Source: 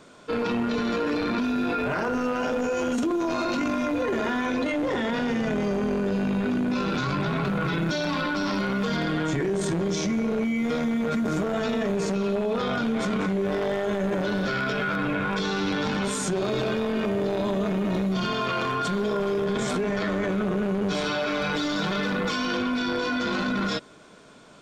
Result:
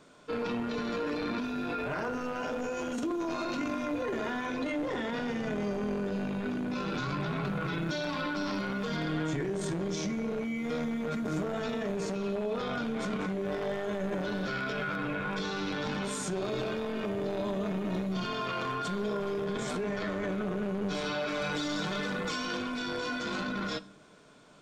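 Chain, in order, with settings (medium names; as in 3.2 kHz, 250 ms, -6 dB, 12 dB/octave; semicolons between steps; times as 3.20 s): 21.28–23.41 s: peaking EQ 8.1 kHz +7.5 dB 0.79 oct; reverberation RT60 0.55 s, pre-delay 7 ms, DRR 14.5 dB; trim -7 dB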